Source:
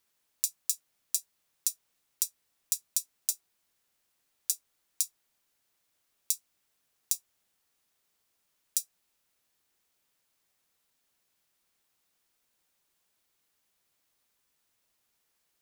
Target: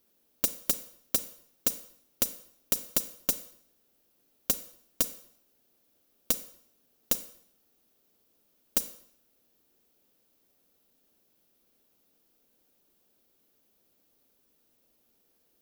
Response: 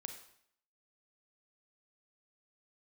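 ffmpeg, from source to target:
-filter_complex "[0:a]aeval=exprs='(mod(6.31*val(0)+1,2)-1)/6.31':c=same,equalizer=f=125:t=o:w=1:g=-4,equalizer=f=250:t=o:w=1:g=7,equalizer=f=500:t=o:w=1:g=4,equalizer=f=1000:t=o:w=1:g=-7,equalizer=f=2000:t=o:w=1:g=-9,equalizer=f=4000:t=o:w=1:g=-4,equalizer=f=8000:t=o:w=1:g=-10,asplit=2[s0][s1];[1:a]atrim=start_sample=2205[s2];[s1][s2]afir=irnorm=-1:irlink=0,volume=1.26[s3];[s0][s3]amix=inputs=2:normalize=0,volume=1.68"

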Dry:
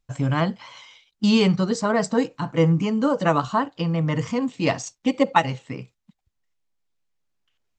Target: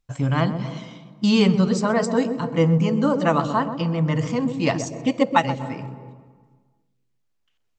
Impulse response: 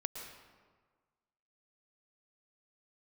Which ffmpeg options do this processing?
-filter_complex "[0:a]asplit=2[s0][s1];[s1]tiltshelf=f=970:g=8.5[s2];[1:a]atrim=start_sample=2205,adelay=128[s3];[s2][s3]afir=irnorm=-1:irlink=0,volume=0.266[s4];[s0][s4]amix=inputs=2:normalize=0"

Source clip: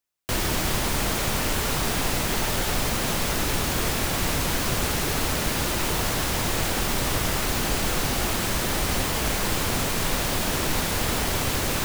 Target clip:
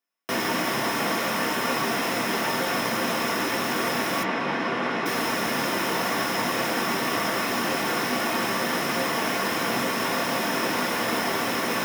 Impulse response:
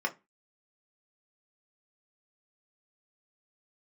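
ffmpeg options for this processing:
-filter_complex "[0:a]asettb=1/sr,asplit=3[s0][s1][s2];[s0]atrim=end=4.234[s3];[s1]atrim=start=4.23:end=5.06,asetpts=PTS-STARTPTS,afade=t=in:d=0.004:c=qsin,afade=t=out:st=0.826:d=0.004:c=qsin,highpass=130,lowpass=3000[s4];[s2]atrim=start=5.056[s5];[s3][s4]acrossfade=d=0.004:c1=hsin:c2=qsin[s6];[s6][s5]acrossfade=d=0.004:c1=qsin:c2=hsin[s7];[1:a]atrim=start_sample=2205[s8];[s7][s8]afir=irnorm=-1:irlink=0,volume=0.631"

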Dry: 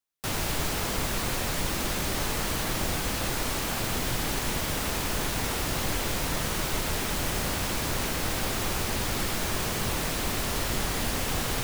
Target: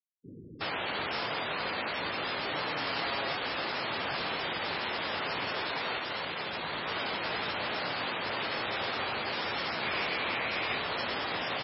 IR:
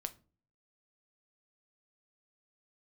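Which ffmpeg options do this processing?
-filter_complex "[0:a]bandreject=f=60:t=h:w=6,bandreject=f=120:t=h:w=6,bandreject=f=180:t=h:w=6,asettb=1/sr,asplit=3[s0][s1][s2];[s0]atrim=end=2.494[s3];[s1]atrim=start=2.49:end=2.96,asetpts=PTS-STARTPTS,afade=t=in:d=0.004:c=qsin,afade=t=out:st=0.466:d=0.004:c=qsin,aecho=1:1:7.4:0.56,atrim=end_sample=20727[s4];[s2]atrim=start=2.956[s5];[s3][s4]acrossfade=d=0.004:c1=hsin:c2=qsin[s6];[s6][s5]acrossfade=d=0.004:c1=qsin:c2=hsin,asettb=1/sr,asplit=3[s7][s8][s9];[s7]atrim=end=5.614[s10];[s8]atrim=start=5.61:end=6.48,asetpts=PTS-STARTPTS,afade=t=in:d=0.004:c=qsin,afade=t=out:st=0.866:d=0.004:c=qsin,aeval=exprs='0.0501*(abs(mod(val(0)/0.0501+3,4)-2)-1)':c=same[s11];[s9]atrim=start=6.476[s12];[s10][s11]acrossfade=d=0.004:c1=hsin:c2=qsin[s13];[s13][s12]acrossfade=d=0.004:c1=qsin:c2=hsin,highpass=94,bass=f=250:g=-12,treble=f=4000:g=-2,acrossover=split=310[s14][s15];[s15]adelay=370[s16];[s14][s16]amix=inputs=2:normalize=0,afreqshift=14,asettb=1/sr,asplit=3[s17][s18][s19];[s17]atrim=end=9.794[s20];[s18]atrim=start=9.79:end=10.78,asetpts=PTS-STARTPTS,afade=t=in:d=0.004:c=qsin,afade=t=out:st=0.986:d=0.004:c=qsin,adynamicequalizer=threshold=0.002:dfrequency=2300:dqfactor=3.7:tfrequency=2300:tqfactor=3.7:attack=5:release=100:ratio=0.375:range=3.5:mode=boostabove:tftype=bell[s21];[s19]atrim=start=10.776[s22];[s20][s21]acrossfade=d=0.004:c1=hsin:c2=qsin[s23];[s23][s22]acrossfade=d=0.004:c1=qsin:c2=hsin,afftfilt=real='re*gte(hypot(re,im),0.00631)':imag='im*gte(hypot(re,im),0.00631)':win_size=1024:overlap=0.75" -ar 16000 -c:a libmp3lame -b:a 16k

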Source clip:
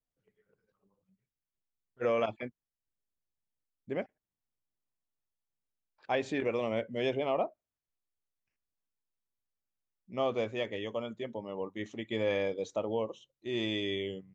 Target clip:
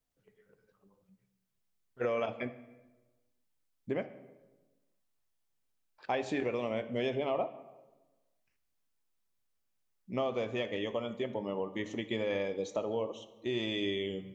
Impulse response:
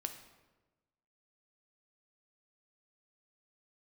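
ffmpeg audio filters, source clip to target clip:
-filter_complex "[0:a]acompressor=threshold=0.0112:ratio=3,asplit=2[s0][s1];[1:a]atrim=start_sample=2205[s2];[s1][s2]afir=irnorm=-1:irlink=0,volume=1.88[s3];[s0][s3]amix=inputs=2:normalize=0,volume=0.841"

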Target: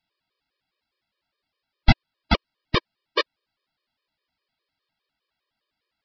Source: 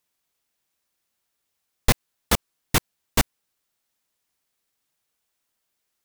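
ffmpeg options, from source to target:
-af "aresample=11025,aresample=44100,afftfilt=real='re*gt(sin(2*PI*4.9*pts/sr)*(1-2*mod(floor(b*sr/1024/320),2)),0)':imag='im*gt(sin(2*PI*4.9*pts/sr)*(1-2*mod(floor(b*sr/1024/320),2)),0)':win_size=1024:overlap=0.75,volume=1.78"

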